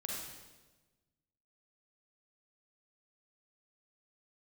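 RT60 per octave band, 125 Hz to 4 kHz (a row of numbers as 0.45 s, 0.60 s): 1.7 s, 1.5 s, 1.3 s, 1.1 s, 1.1 s, 1.1 s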